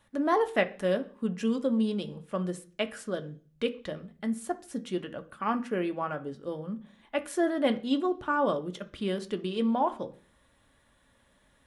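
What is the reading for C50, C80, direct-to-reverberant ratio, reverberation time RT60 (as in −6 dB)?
16.5 dB, 21.5 dB, 6.5 dB, 0.40 s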